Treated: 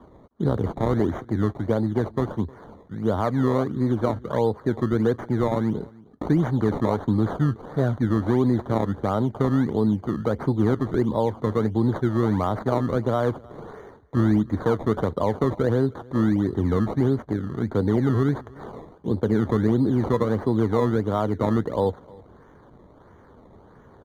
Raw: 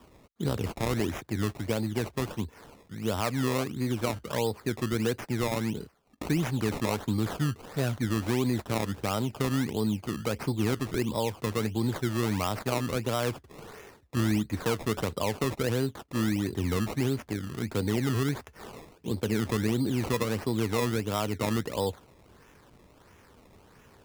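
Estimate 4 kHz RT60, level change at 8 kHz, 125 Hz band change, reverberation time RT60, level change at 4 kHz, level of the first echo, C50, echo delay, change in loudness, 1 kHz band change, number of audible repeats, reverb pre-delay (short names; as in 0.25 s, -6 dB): none, under -10 dB, +6.0 dB, none, -7.5 dB, -24.0 dB, none, 0.309 s, +6.5 dB, +5.5 dB, 1, none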